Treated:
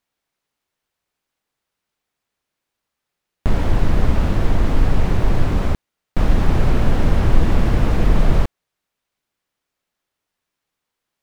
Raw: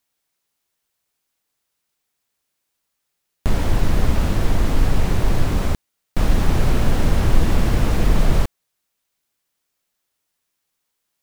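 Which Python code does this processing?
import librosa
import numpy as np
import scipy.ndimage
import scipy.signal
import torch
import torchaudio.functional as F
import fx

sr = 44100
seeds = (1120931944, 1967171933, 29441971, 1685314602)

y = fx.high_shelf(x, sr, hz=4800.0, db=-12.0)
y = F.gain(torch.from_numpy(y), 1.5).numpy()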